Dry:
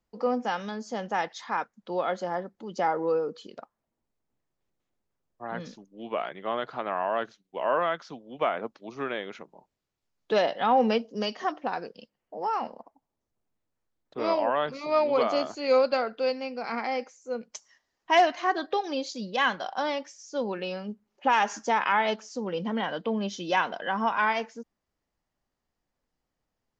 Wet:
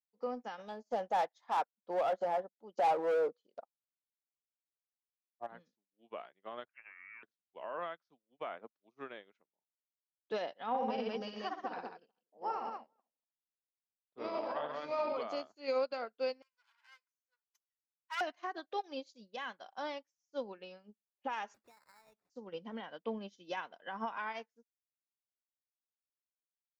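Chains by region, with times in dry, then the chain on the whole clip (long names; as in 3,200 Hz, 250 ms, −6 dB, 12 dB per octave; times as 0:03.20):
0:00.58–0:05.47: hard clipping −28.5 dBFS + parametric band 670 Hz +12 dB 1.2 octaves
0:06.68–0:07.23: downward compressor, threshold −29 dBFS + downward expander −40 dBFS + voice inversion scrambler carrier 2,900 Hz
0:10.69–0:15.17: high-frequency loss of the air 50 metres + multi-tap delay 54/63/115/191/430 ms −4.5/−10/−7.5/−3/−19 dB
0:16.42–0:18.21: lower of the sound and its delayed copy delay 2 ms + high-pass filter 1,100 Hz 24 dB per octave + high-shelf EQ 4,800 Hz −5 dB
0:21.54–0:22.30: downward compressor 4 to 1, threshold −37 dBFS + sample-rate reduction 3,100 Hz
whole clip: low-shelf EQ 110 Hz −10 dB; brickwall limiter −20 dBFS; expander for the loud parts 2.5 to 1, over −49 dBFS; level −2.5 dB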